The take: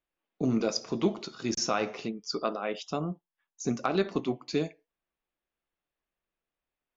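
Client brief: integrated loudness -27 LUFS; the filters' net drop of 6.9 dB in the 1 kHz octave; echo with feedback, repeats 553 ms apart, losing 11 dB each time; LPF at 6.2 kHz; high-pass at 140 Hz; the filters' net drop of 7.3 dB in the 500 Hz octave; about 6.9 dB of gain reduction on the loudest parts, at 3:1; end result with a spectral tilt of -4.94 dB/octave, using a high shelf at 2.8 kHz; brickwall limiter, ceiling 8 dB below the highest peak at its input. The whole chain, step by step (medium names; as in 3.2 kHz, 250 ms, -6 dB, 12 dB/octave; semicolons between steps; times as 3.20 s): high-pass 140 Hz; low-pass 6.2 kHz; peaking EQ 500 Hz -8.5 dB; peaking EQ 1 kHz -5.5 dB; treble shelf 2.8 kHz -8 dB; compression 3:1, threshold -35 dBFS; peak limiter -29 dBFS; feedback delay 553 ms, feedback 28%, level -11 dB; trim +15 dB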